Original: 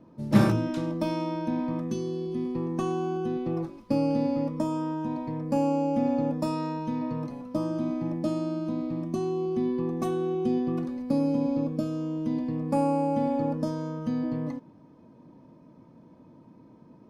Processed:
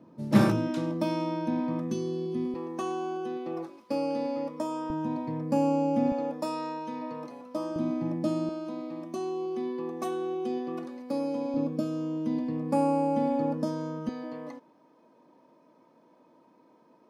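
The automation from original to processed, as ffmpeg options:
-af "asetnsamples=n=441:p=0,asendcmd='2.54 highpass f 390;4.9 highpass f 110;6.12 highpass f 390;7.76 highpass f 120;8.49 highpass f 390;11.54 highpass f 170;14.09 highpass f 460',highpass=130"

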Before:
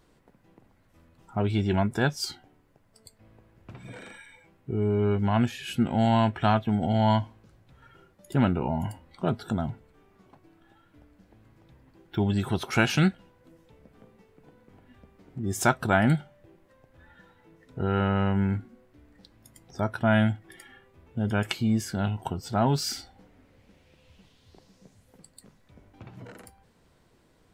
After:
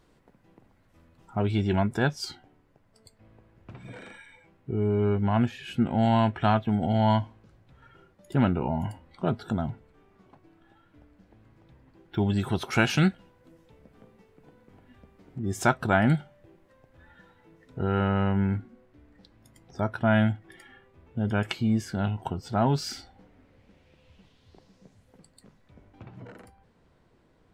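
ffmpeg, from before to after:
-af "asetnsamples=n=441:p=0,asendcmd='1.97 lowpass f 4500;5.09 lowpass f 2400;6.03 lowpass f 4600;12.19 lowpass f 11000;15.39 lowpass f 4700;16.14 lowpass f 8800;17.84 lowpass f 3900;26.05 lowpass f 2400',lowpass=f=8300:p=1"

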